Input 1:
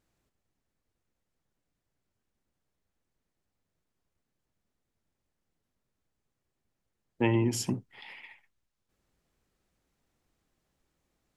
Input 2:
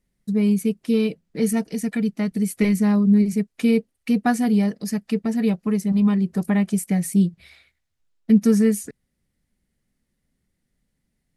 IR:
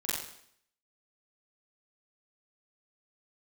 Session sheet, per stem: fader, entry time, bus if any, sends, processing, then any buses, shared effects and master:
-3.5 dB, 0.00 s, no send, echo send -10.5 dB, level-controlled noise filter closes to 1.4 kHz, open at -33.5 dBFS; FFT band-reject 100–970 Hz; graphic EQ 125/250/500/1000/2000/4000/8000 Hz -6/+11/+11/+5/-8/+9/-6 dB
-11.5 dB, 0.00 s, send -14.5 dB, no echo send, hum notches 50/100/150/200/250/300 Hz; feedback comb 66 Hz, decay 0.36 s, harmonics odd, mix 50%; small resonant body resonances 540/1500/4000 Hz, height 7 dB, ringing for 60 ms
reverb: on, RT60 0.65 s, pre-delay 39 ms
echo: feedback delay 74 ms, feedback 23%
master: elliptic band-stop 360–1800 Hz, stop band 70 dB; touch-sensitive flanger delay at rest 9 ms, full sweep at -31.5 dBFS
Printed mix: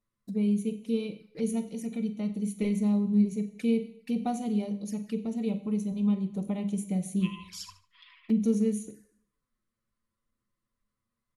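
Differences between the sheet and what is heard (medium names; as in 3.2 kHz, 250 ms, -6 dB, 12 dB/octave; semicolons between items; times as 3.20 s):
stem 2 -11.5 dB -> -5.0 dB; master: missing elliptic band-stop 360–1800 Hz, stop band 70 dB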